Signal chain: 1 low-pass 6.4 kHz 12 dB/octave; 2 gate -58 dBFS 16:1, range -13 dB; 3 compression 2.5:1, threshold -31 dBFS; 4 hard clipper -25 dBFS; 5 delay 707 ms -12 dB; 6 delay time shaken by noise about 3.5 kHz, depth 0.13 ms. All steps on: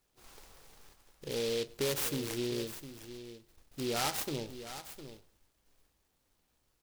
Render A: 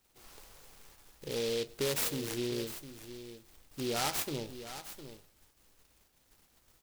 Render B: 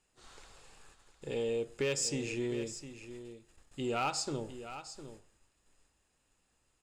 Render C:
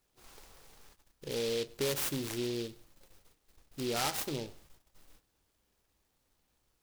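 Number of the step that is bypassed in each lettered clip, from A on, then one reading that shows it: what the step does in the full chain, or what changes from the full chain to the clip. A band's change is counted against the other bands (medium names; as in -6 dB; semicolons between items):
1, momentary loudness spread change +4 LU; 6, 4 kHz band -4.0 dB; 5, momentary loudness spread change -5 LU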